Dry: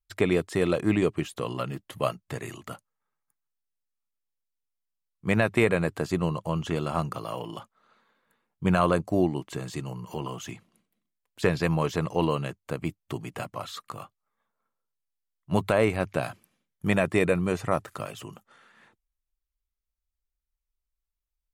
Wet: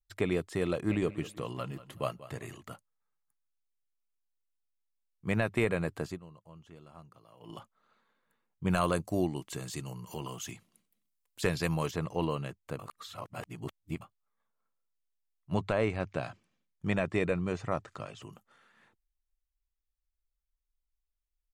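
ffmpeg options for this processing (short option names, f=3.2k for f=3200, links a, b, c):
-filter_complex "[0:a]asplit=3[a][b][c];[a]afade=t=out:st=0.88:d=0.02[d];[b]aecho=1:1:189|378|567:0.158|0.046|0.0133,afade=t=in:st=0.88:d=0.02,afade=t=out:st=2.59:d=0.02[e];[c]afade=t=in:st=2.59:d=0.02[f];[d][e][f]amix=inputs=3:normalize=0,asettb=1/sr,asplit=3[g][h][i];[g]atrim=end=8.704[j];[h]atrim=start=8.7:end=11.91,asetpts=PTS-STARTPTS,afade=t=in:d=0.004:c=qsin,afade=t=out:st=3.206:d=0.004:c=qsin,highshelf=f=3.7k:g=11[k];[i]atrim=start=11.906[l];[j][k]acrossfade=d=0.004:c1=hsin:c2=qsin[m];[m][l]acrossfade=d=0.004:c1=qsin:c2=hsin,asettb=1/sr,asplit=3[n][o][p];[n]atrim=end=15.544[q];[o]atrim=start=15.54:end=18.22,asetpts=PTS-STARTPTS,afade=t=in:d=0.004:c=qsin,afade=t=out:st=2.676:d=0.004:c=qsin,lowpass=f=7.5k:w=0.5412,lowpass=f=7.5k:w=1.3066[r];[p]atrim=start=18.216[s];[q][r]acrossfade=d=0.004:c1=hsin:c2=qsin[t];[t][s]acrossfade=d=0.004:c1=qsin:c2=hsin,asplit=5[u][v][w][x][y];[u]atrim=end=6.19,asetpts=PTS-STARTPTS,afade=t=out:st=6.07:d=0.12:silence=0.125893[z];[v]atrim=start=6.19:end=7.4,asetpts=PTS-STARTPTS,volume=-18dB[aa];[w]atrim=start=7.4:end=12.792,asetpts=PTS-STARTPTS,afade=t=in:d=0.12:silence=0.125893[ab];[x]atrim=start=12.788:end=14.012,asetpts=PTS-STARTPTS,areverse[ac];[y]atrim=start=14.008[ad];[z][aa][ab]concat=n=3:v=0:a=1[ae];[ae][ac]acrossfade=d=0.004:c1=hsin:c2=hsin[af];[af][ad]acrossfade=d=0.004:c1=hsin:c2=hsin,lowshelf=f=60:g=9.5,volume=-7dB"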